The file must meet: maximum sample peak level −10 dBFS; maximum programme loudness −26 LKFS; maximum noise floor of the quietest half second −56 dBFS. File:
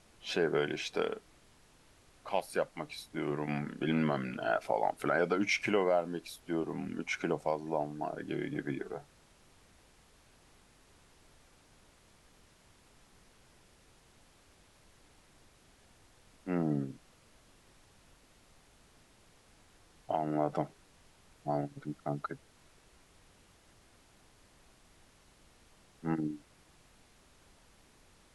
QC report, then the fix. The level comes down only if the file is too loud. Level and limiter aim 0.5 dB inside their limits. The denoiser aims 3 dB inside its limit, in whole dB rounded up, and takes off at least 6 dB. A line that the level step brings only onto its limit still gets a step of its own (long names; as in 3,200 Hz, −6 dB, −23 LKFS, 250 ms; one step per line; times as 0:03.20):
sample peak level −16.0 dBFS: in spec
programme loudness −35.0 LKFS: in spec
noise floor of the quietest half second −63 dBFS: in spec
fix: no processing needed